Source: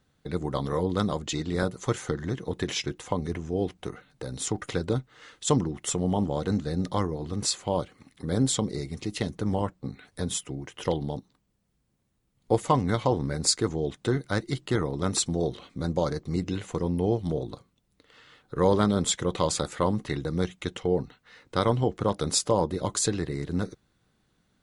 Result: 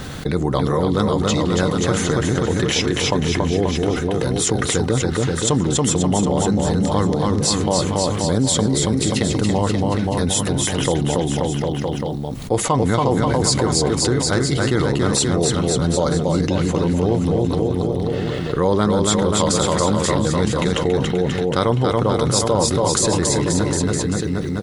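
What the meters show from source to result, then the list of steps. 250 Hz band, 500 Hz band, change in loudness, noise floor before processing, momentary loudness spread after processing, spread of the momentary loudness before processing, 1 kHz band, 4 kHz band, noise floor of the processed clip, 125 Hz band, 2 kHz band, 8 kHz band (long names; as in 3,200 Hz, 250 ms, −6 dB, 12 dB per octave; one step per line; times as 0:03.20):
+10.5 dB, +9.5 dB, +9.5 dB, −71 dBFS, 4 LU, 9 LU, +9.0 dB, +10.5 dB, −24 dBFS, +10.5 dB, +11.5 dB, +10.5 dB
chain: bouncing-ball delay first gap 280 ms, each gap 0.9×, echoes 5
envelope flattener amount 70%
level +2.5 dB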